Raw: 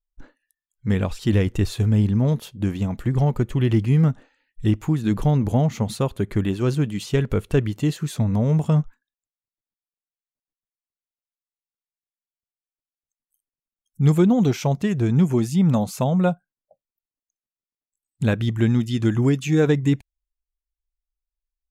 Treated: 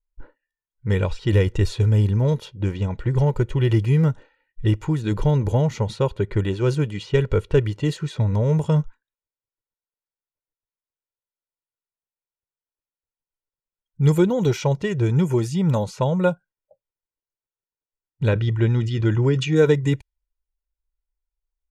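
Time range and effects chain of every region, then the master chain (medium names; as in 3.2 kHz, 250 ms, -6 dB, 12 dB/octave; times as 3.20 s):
18.28–19.56 s: distance through air 120 m + decay stretcher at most 88 dB/s
whole clip: level-controlled noise filter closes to 1.5 kHz, open at -14.5 dBFS; comb 2.1 ms, depth 63%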